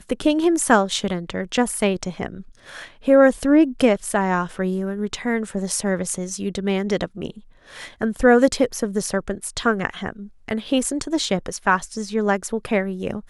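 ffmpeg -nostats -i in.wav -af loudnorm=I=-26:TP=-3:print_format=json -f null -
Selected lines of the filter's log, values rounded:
"input_i" : "-21.5",
"input_tp" : "-2.4",
"input_lra" : "3.8",
"input_thresh" : "-31.9",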